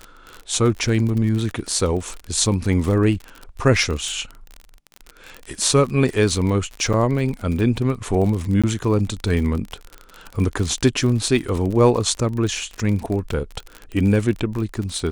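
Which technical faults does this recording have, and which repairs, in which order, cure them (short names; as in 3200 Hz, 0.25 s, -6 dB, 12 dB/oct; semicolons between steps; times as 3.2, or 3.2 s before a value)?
crackle 41/s -25 dBFS
6.93–6.94 gap 6.2 ms
8.62–8.64 gap 16 ms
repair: de-click; interpolate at 6.93, 6.2 ms; interpolate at 8.62, 16 ms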